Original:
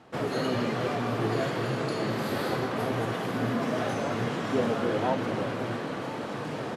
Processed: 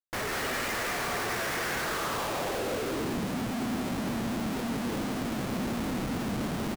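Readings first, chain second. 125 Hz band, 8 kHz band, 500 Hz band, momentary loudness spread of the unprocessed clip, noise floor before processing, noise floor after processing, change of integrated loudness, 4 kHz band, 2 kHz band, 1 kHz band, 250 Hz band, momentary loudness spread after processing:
−4.5 dB, +8.5 dB, −5.5 dB, 6 LU, −35 dBFS, −33 dBFS, −2.0 dB, +1.5 dB, +1.5 dB, −2.0 dB, −1.0 dB, 2 LU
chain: band-pass filter sweep 2,000 Hz → 220 Hz, 0:01.74–0:03.21
comparator with hysteresis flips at −46.5 dBFS
single-tap delay 192 ms −6 dB
level +4.5 dB

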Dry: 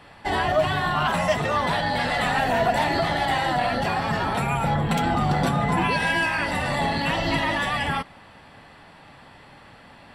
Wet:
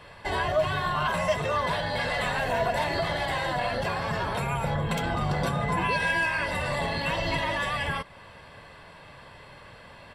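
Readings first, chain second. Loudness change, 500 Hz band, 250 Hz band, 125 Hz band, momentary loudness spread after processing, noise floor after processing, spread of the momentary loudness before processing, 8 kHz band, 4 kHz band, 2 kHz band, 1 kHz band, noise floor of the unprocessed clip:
−4.5 dB, −3.0 dB, −7.5 dB, −4.0 dB, 4 LU, −49 dBFS, 3 LU, −4.0 dB, −4.5 dB, −3.5 dB, −5.5 dB, −49 dBFS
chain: comb filter 1.9 ms, depth 49%
in parallel at 0 dB: downward compressor, threshold −34 dBFS, peak gain reduction 18 dB
on the sum: level −6.5 dB

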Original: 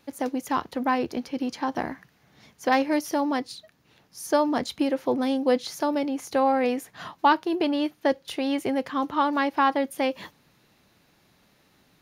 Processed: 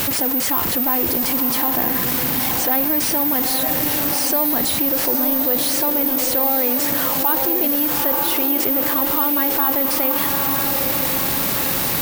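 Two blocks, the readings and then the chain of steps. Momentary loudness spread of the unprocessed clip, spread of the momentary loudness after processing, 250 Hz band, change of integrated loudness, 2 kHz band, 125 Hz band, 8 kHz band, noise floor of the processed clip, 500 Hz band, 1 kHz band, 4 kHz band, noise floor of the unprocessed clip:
10 LU, 2 LU, +3.0 dB, +9.5 dB, +5.5 dB, +17.0 dB, +19.5 dB, −21 dBFS, +1.5 dB, +1.5 dB, +11.0 dB, −63 dBFS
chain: converter with a step at zero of −24.5 dBFS
on a send: feedback delay with all-pass diffusion 911 ms, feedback 46%, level −6.5 dB
on the sum: bad sample-rate conversion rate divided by 3×, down none, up zero stuff
envelope flattener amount 70%
level −7 dB

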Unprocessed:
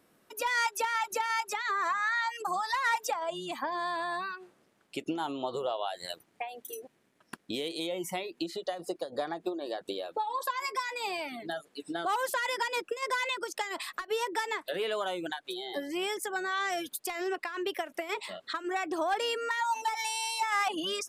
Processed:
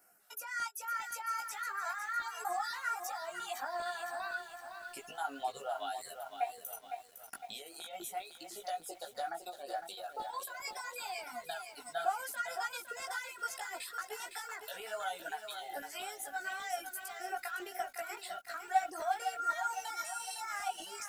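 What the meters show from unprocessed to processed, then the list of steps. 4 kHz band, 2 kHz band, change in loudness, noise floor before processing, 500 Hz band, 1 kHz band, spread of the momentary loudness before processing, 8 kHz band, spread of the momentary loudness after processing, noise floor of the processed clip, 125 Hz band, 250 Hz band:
−9.0 dB, −7.0 dB, −6.5 dB, −70 dBFS, −9.5 dB, −5.0 dB, 9 LU, −3.5 dB, 9 LU, −56 dBFS, below −15 dB, −18.0 dB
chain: reverb reduction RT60 0.82 s
first-order pre-emphasis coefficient 0.9
downward compressor 5 to 1, threshold −48 dBFS, peak gain reduction 16 dB
auto-filter notch square 2.5 Hz 320–3,600 Hz
hollow resonant body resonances 740/1,400 Hz, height 18 dB, ringing for 30 ms
multi-voice chorus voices 6, 0.78 Hz, delay 17 ms, depth 2.9 ms
feedback echo at a low word length 508 ms, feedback 55%, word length 11 bits, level −7.5 dB
level +8.5 dB

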